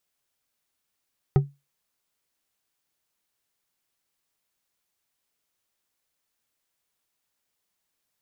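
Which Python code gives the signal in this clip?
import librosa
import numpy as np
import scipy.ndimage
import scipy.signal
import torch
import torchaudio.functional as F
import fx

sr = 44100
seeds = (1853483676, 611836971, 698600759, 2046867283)

y = fx.strike_glass(sr, length_s=0.89, level_db=-11.0, body='bar', hz=141.0, decay_s=0.23, tilt_db=7, modes=5)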